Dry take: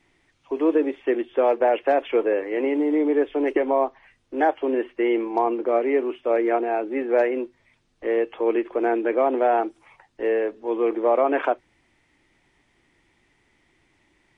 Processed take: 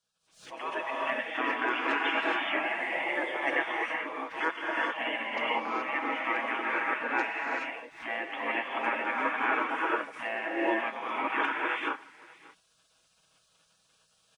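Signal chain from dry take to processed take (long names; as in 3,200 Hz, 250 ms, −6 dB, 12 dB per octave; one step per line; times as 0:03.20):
high-pass filter 640 Hz 6 dB per octave
single-tap delay 582 ms −23 dB
reverb whose tail is shaped and stops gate 450 ms rising, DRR −2.5 dB
gate on every frequency bin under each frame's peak −15 dB weak
automatic gain control gain up to 10 dB
comb filter 6.2 ms, depth 43%
background raised ahead of every attack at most 120 dB per second
level −7.5 dB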